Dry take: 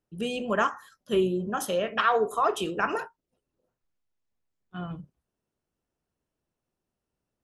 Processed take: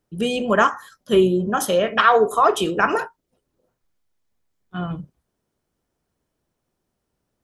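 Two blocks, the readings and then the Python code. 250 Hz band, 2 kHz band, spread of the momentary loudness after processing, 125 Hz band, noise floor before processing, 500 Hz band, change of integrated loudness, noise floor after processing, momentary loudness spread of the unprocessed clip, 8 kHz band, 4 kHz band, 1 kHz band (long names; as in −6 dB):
+8.5 dB, +8.5 dB, 17 LU, +8.5 dB, below −85 dBFS, +8.5 dB, +8.5 dB, −78 dBFS, 17 LU, +8.5 dB, +8.0 dB, +8.5 dB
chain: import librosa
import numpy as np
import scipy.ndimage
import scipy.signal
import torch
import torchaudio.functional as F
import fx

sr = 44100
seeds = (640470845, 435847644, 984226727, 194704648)

y = fx.notch(x, sr, hz=2700.0, q=17.0)
y = y * 10.0 ** (8.5 / 20.0)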